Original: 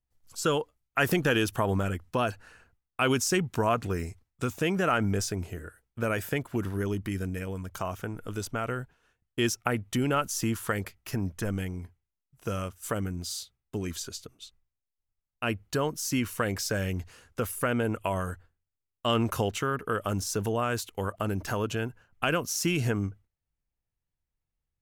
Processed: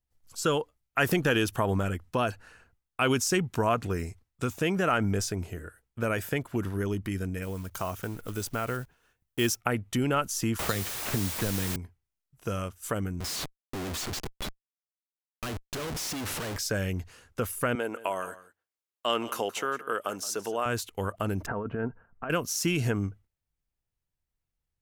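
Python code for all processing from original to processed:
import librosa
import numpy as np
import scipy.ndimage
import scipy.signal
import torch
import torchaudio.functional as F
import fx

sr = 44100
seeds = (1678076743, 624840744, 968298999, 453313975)

y = fx.chain(x, sr, fx.block_float(bits=5),
    fx.high_shelf(hz=11000.0, db=9.0), at=(7.42, 9.61))
y = fx.chain(y, sr, fx.resample_bad(factor=8, down='none', up='hold'),
    fx.quant_dither(seeds[0], bits=6, dither='triangular'),
    fx.band_squash(depth_pct=70), at=(10.59, 11.76))
y = fx.chain(y, sr, fx.schmitt(flips_db=-44.5),
    fx.vibrato_shape(shape='square', rate_hz=3.1, depth_cents=100.0), at=(13.2, 16.57))
y = fx.chain(y, sr, fx.highpass(hz=380.0, slope=12),
    fx.echo_single(ms=172, db=-17.0), at=(17.75, 20.66))
y = fx.chain(y, sr, fx.lowpass(hz=1600.0, slope=24),
    fx.over_compress(threshold_db=-31.0, ratio=-0.5),
    fx.comb(ms=4.4, depth=0.33), at=(21.46, 22.3))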